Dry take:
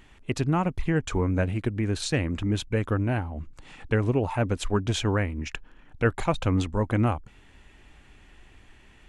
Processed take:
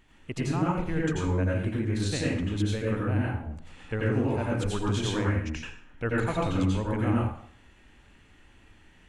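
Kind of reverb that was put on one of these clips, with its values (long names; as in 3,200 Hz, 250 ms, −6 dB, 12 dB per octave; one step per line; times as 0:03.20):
dense smooth reverb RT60 0.58 s, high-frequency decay 0.85×, pre-delay 75 ms, DRR −4.5 dB
level −8 dB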